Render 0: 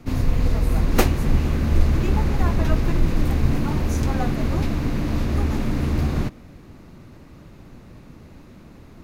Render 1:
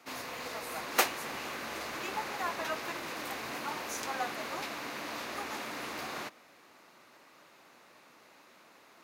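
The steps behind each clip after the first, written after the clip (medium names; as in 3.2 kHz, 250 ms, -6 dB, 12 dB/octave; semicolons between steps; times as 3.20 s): high-pass 780 Hz 12 dB/octave; trim -2 dB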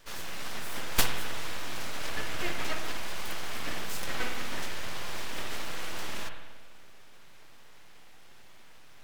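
full-wave rectifier; spring tank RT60 1.3 s, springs 48/56 ms, chirp 60 ms, DRR 4.5 dB; trim +3.5 dB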